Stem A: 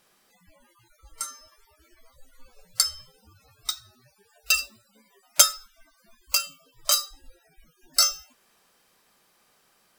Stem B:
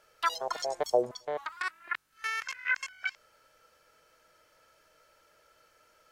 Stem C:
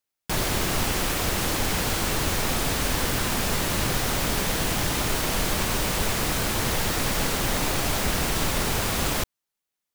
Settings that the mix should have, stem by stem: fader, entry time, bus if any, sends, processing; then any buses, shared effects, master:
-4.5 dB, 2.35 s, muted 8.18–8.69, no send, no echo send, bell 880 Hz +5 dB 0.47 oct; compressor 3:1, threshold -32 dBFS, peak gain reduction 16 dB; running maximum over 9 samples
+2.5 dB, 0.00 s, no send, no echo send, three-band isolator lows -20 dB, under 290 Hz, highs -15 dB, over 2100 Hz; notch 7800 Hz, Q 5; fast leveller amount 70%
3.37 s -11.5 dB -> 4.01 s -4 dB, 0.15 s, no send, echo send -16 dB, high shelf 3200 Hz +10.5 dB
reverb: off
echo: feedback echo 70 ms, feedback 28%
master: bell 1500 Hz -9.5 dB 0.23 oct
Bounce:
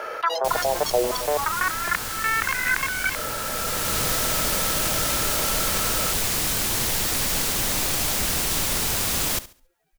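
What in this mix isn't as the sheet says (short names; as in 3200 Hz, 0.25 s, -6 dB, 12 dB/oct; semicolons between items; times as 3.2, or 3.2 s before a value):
stem A -4.5 dB -> -11.5 dB; master: missing bell 1500 Hz -9.5 dB 0.23 oct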